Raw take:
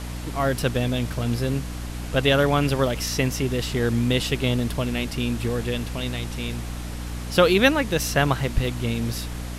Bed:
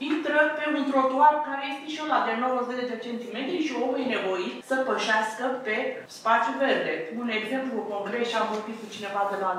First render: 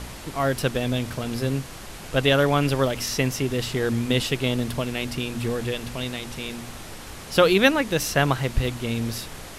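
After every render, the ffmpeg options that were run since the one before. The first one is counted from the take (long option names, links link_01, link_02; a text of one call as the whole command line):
ffmpeg -i in.wav -af "bandreject=frequency=60:width_type=h:width=4,bandreject=frequency=120:width_type=h:width=4,bandreject=frequency=180:width_type=h:width=4,bandreject=frequency=240:width_type=h:width=4,bandreject=frequency=300:width_type=h:width=4" out.wav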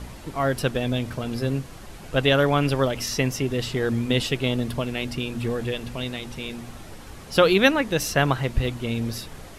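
ffmpeg -i in.wav -af "afftdn=noise_reduction=7:noise_floor=-39" out.wav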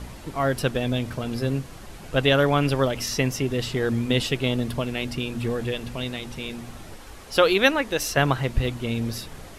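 ffmpeg -i in.wav -filter_complex "[0:a]asettb=1/sr,asplit=3[link_01][link_02][link_03];[link_01]atrim=end=6.964[link_04];[link_02]atrim=start=6.96:end=8.17,asetpts=PTS-STARTPTS,afade=type=in:duration=0.004:curve=qsin,afade=type=out:start_time=1.206:duration=0.004:curve=qsin,equalizer=frequency=150:width=1.1:gain=-10.5[link_05];[link_03]atrim=start=8.166[link_06];[link_04][link_05]acrossfade=duration=0.004:curve1=hsin:curve2=qsin[link_07];[link_07][link_06]acrossfade=duration=0.004:curve1=qsin:curve2=hsin" out.wav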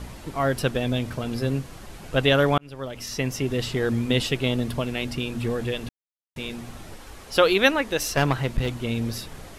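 ffmpeg -i in.wav -filter_complex "[0:a]asettb=1/sr,asplit=3[link_01][link_02][link_03];[link_01]atrim=end=8.074[link_04];[link_02]atrim=start=8.07:end=8.81,asetpts=PTS-STARTPTS,afade=type=in:duration=0.004:curve=qsin,afade=type=out:start_time=0.736:duration=0.004:curve=qsin,aeval=exprs='clip(val(0),-1,0.0794)':channel_layout=same[link_05];[link_03]atrim=start=8.806[link_06];[link_04][link_05]acrossfade=duration=0.004:curve1=hsin:curve2=qsin[link_07];[link_07][link_06]acrossfade=duration=0.004:curve1=qsin:curve2=hsin,asplit=4[link_08][link_09][link_10][link_11];[link_08]atrim=end=2.58,asetpts=PTS-STARTPTS,afade=type=out:start_time=2.576:duration=0.004:curve=hsin[link_12];[link_09]atrim=start=2.58:end=5.89,asetpts=PTS-STARTPTS,afade=type=in:duration=0.94,afade=type=out:start_time=3.306:duration=0.004:curve=hsin[link_13];[link_10]atrim=start=5.89:end=6.36,asetpts=PTS-STARTPTS,volume=0[link_14];[link_11]atrim=start=6.36,asetpts=PTS-STARTPTS,afade=type=in:duration=0.004:curve=hsin[link_15];[link_12][link_13][link_14][link_15]concat=n=4:v=0:a=1" out.wav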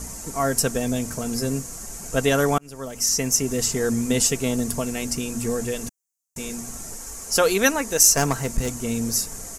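ffmpeg -i in.wav -af "highshelf=frequency=4900:width_type=q:width=3:gain=12,aecho=1:1:4.4:0.36" out.wav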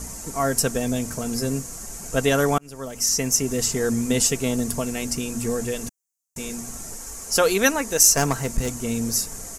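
ffmpeg -i in.wav -af anull out.wav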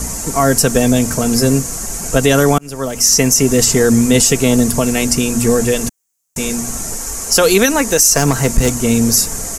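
ffmpeg -i in.wav -filter_complex "[0:a]acrossover=split=380|3000[link_01][link_02][link_03];[link_02]acompressor=threshold=-23dB:ratio=6[link_04];[link_01][link_04][link_03]amix=inputs=3:normalize=0,alimiter=level_in=12.5dB:limit=-1dB:release=50:level=0:latency=1" out.wav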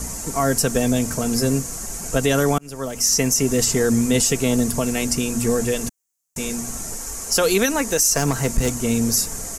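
ffmpeg -i in.wav -af "volume=-7dB" out.wav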